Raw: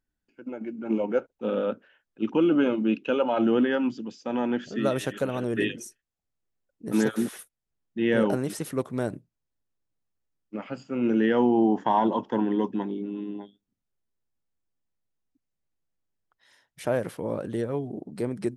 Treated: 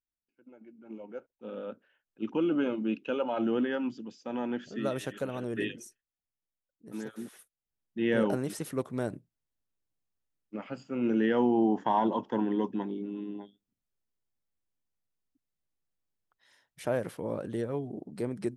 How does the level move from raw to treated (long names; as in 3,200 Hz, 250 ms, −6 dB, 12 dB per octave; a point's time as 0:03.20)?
0:00.99 −18 dB
0:02.28 −6.5 dB
0:05.75 −6.5 dB
0:07.06 −16 dB
0:08.01 −4 dB